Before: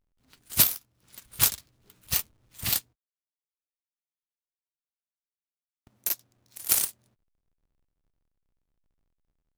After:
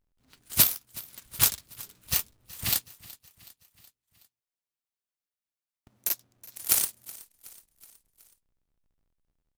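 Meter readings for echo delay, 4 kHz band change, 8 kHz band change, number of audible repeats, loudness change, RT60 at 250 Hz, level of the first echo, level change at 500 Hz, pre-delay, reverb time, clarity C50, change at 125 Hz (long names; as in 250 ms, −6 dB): 372 ms, 0.0 dB, 0.0 dB, 3, −0.5 dB, no reverb audible, −20.5 dB, 0.0 dB, no reverb audible, no reverb audible, no reverb audible, 0.0 dB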